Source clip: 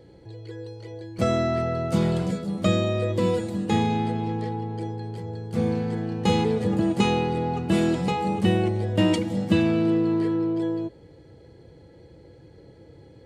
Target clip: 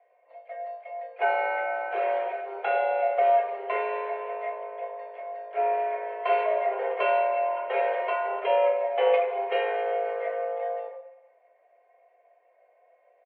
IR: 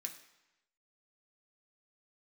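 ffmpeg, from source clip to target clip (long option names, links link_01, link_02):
-filter_complex "[0:a]agate=range=-11dB:threshold=-39dB:ratio=16:detection=peak,acontrast=76,asplit=2[link_01][link_02];[link_02]asetrate=37084,aresample=44100,atempo=1.18921,volume=-11dB[link_03];[link_01][link_03]amix=inputs=2:normalize=0[link_04];[1:a]atrim=start_sample=2205,asetrate=48510,aresample=44100[link_05];[link_04][link_05]afir=irnorm=-1:irlink=0,highpass=frequency=320:width_type=q:width=0.5412,highpass=frequency=320:width_type=q:width=1.307,lowpass=frequency=2300:width_type=q:width=0.5176,lowpass=frequency=2300:width_type=q:width=0.7071,lowpass=frequency=2300:width_type=q:width=1.932,afreqshift=200,volume=1dB"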